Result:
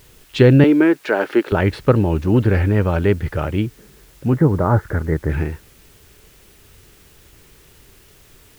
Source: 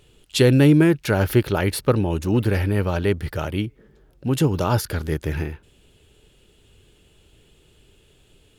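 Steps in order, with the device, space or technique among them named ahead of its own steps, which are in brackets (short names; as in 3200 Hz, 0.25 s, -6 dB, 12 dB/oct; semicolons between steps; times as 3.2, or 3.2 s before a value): high shelf 6000 Hz +11.5 dB; 0.64–1.52 HPF 290 Hz 24 dB/oct; 4.33–5.3 steep low-pass 2100 Hz 96 dB/oct; cassette deck with a dirty head (tape spacing loss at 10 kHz 37 dB; wow and flutter; white noise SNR 34 dB); bell 1800 Hz +4 dB 1.4 oct; gain +5.5 dB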